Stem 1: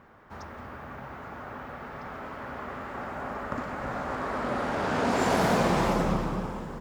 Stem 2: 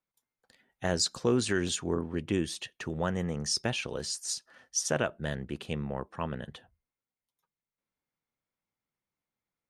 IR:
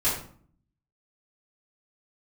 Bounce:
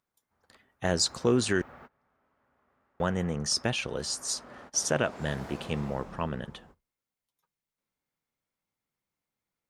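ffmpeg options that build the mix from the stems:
-filter_complex "[0:a]volume=-9.5dB,afade=t=out:st=2.82:d=0.56:silence=0.334965[a];[1:a]volume=2dB,asplit=3[b][c][d];[b]atrim=end=1.62,asetpts=PTS-STARTPTS,afade=t=out:st=1.616:d=0.004:c=hsin[e];[c]atrim=start=1.62:end=3,asetpts=PTS-STARTPTS,volume=0[f];[d]atrim=start=3,asetpts=PTS-STARTPTS,afade=t=in:d=0.004:c=hsin[g];[e][f][g]concat=n=3:v=0:a=1,asplit=2[h][i];[i]apad=whole_len=300065[j];[a][j]sidechaingate=range=-25dB:threshold=-59dB:ratio=16:detection=peak[k];[k][h]amix=inputs=2:normalize=0"

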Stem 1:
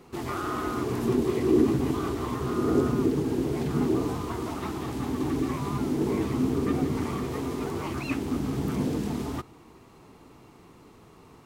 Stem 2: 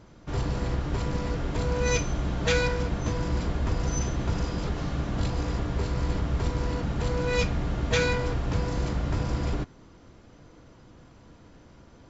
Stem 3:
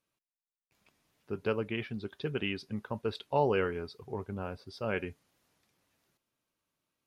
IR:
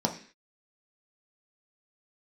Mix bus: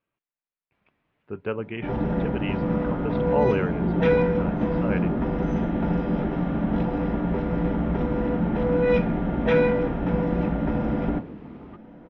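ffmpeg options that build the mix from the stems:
-filter_complex "[0:a]adelay=2350,volume=-12dB[a];[1:a]adelay=1550,volume=-1.5dB,asplit=2[b][c];[c]volume=-8.5dB[d];[2:a]volume=2.5dB,asplit=2[e][f];[f]apad=whole_len=601564[g];[b][g]sidechaincompress=threshold=-29dB:ratio=8:attack=16:release=867[h];[3:a]atrim=start_sample=2205[i];[d][i]afir=irnorm=-1:irlink=0[j];[a][h][e][j]amix=inputs=4:normalize=0,lowpass=f=2.7k:w=0.5412,lowpass=f=2.7k:w=1.3066"

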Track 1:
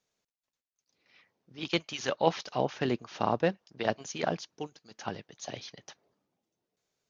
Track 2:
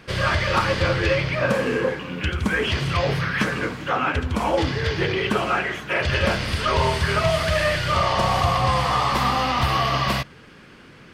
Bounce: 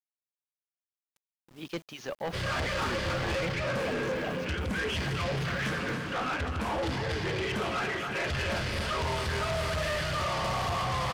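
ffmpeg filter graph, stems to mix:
-filter_complex "[0:a]highshelf=f=2.8k:g=-8.5,acrusher=bits=8:mix=0:aa=0.000001,volume=-2dB[a];[1:a]adelay=2250,volume=-4.5dB,asplit=2[b][c];[c]volume=-9dB,aecho=0:1:275|550|825|1100|1375|1650|1925|2200|2475:1|0.57|0.325|0.185|0.106|0.0602|0.0343|0.0195|0.0111[d];[a][b][d]amix=inputs=3:normalize=0,asoftclip=type=tanh:threshold=-27.5dB"

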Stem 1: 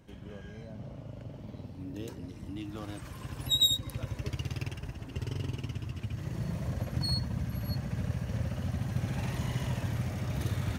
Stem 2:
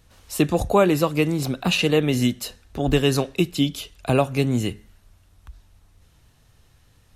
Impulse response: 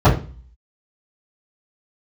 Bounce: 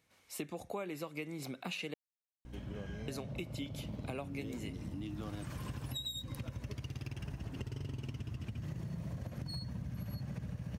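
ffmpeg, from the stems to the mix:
-filter_complex "[0:a]adynamicequalizer=threshold=0.00562:dfrequency=160:dqfactor=1.3:tfrequency=160:tqfactor=1.3:attack=5:release=100:ratio=0.375:range=2.5:mode=boostabove:tftype=bell,acompressor=threshold=-34dB:ratio=6,aeval=exprs='val(0)+0.00282*(sin(2*PI*60*n/s)+sin(2*PI*2*60*n/s)/2+sin(2*PI*3*60*n/s)/3+sin(2*PI*4*60*n/s)/4+sin(2*PI*5*60*n/s)/5)':c=same,adelay=2450,volume=2dB[a];[1:a]highpass=160,equalizer=f=2.2k:w=6.7:g=11.5,volume=-14dB,asplit=3[b][c][d];[b]atrim=end=1.94,asetpts=PTS-STARTPTS,afade=t=out:st=1.936:d=0.004:c=hsin[e];[c]atrim=start=1.94:end=3.08,asetpts=PTS-STARTPTS,volume=0[f];[d]atrim=start=3.08,asetpts=PTS-STARTPTS,afade=t=in:d=0.004:c=hsin[g];[e][f][g]concat=n=3:v=0:a=1[h];[a][h]amix=inputs=2:normalize=0,acompressor=threshold=-38dB:ratio=5"

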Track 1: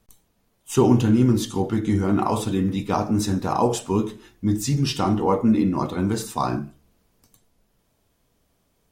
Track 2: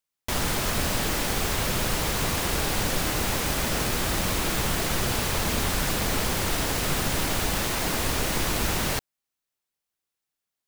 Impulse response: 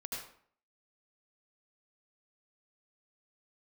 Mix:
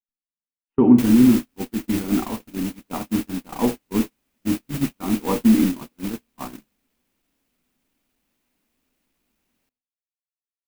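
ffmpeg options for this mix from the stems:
-filter_complex "[0:a]lowpass=f=2.2k:w=0.5412,lowpass=f=2.2k:w=1.3066,volume=-5dB,asplit=2[a][b];[b]volume=-19dB[c];[1:a]highshelf=f=11k:g=10,asoftclip=type=hard:threshold=-25dB,adelay=700,volume=-4dB,asplit=2[d][e];[e]volume=-20.5dB[f];[2:a]atrim=start_sample=2205[g];[c][f]amix=inputs=2:normalize=0[h];[h][g]afir=irnorm=-1:irlink=0[i];[a][d][i]amix=inputs=3:normalize=0,agate=range=-44dB:threshold=-23dB:ratio=16:detection=peak,equalizer=f=100:t=o:w=0.67:g=-6,equalizer=f=250:t=o:w=0.67:g=12,equalizer=f=2.5k:t=o:w=0.67:g=5"

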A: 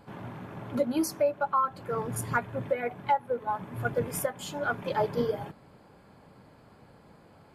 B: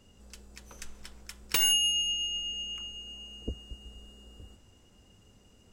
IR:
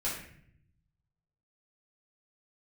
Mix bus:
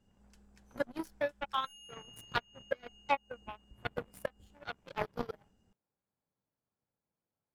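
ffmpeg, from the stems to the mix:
-filter_complex "[0:a]aeval=exprs='0.188*(cos(1*acos(clip(val(0)/0.188,-1,1)))-cos(1*PI/2))+0.0668*(cos(3*acos(clip(val(0)/0.188,-1,1)))-cos(3*PI/2))+0.00299*(cos(5*acos(clip(val(0)/0.188,-1,1)))-cos(5*PI/2))':c=same,volume=-0.5dB,asplit=2[a][b];[1:a]equalizer=f=200:t=o:w=0.33:g=7,equalizer=f=800:t=o:w=0.33:g=9,equalizer=f=1.6k:t=o:w=0.33:g=8,acompressor=threshold=-40dB:ratio=2.5,lowshelf=f=500:g=6.5,volume=-18dB[c];[b]apad=whole_len=252631[d];[c][d]sidechaincompress=threshold=-37dB:ratio=8:attack=6.6:release=184[e];[a][e]amix=inputs=2:normalize=0"

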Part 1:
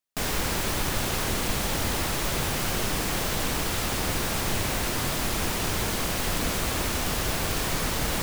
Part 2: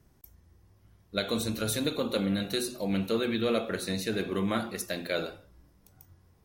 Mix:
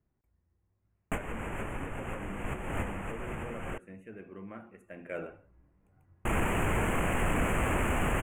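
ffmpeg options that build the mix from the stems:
-filter_complex "[0:a]adelay=950,volume=1.5dB,asplit=3[a][b][c];[a]atrim=end=3.78,asetpts=PTS-STARTPTS,afade=t=out:st=3.776:d=0.004:c=hsin[d];[b]atrim=start=3.78:end=6.25,asetpts=PTS-STARTPTS,volume=0[e];[c]atrim=start=6.25,asetpts=PTS-STARTPTS,afade=t=in:d=0.004:c=hsin[f];[d][e][f]concat=n=3:v=0:a=1[g];[1:a]volume=-5dB,afade=t=in:st=4.83:d=0.41:silence=0.298538,asplit=2[h][i];[i]apad=whole_len=404456[j];[g][j]sidechaincompress=threshold=-51dB:ratio=8:attack=7.1:release=316[k];[k][h]amix=inputs=2:normalize=0,adynamicsmooth=sensitivity=3.5:basefreq=3.8k,asoftclip=type=tanh:threshold=-19dB,asuperstop=centerf=4600:order=8:qfactor=1"

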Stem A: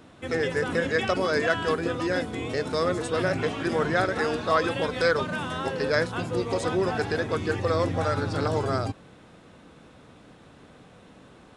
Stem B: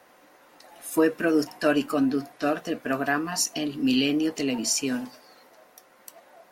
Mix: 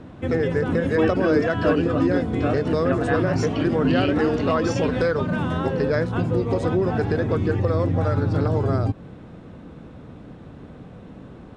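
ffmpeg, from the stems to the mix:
-filter_complex "[0:a]lowshelf=f=420:g=11.5,acompressor=threshold=-21dB:ratio=3,volume=2.5dB[a];[1:a]lowpass=4.9k,volume=0dB[b];[a][b]amix=inputs=2:normalize=0,lowpass=10k,highshelf=f=3.6k:g=-10"

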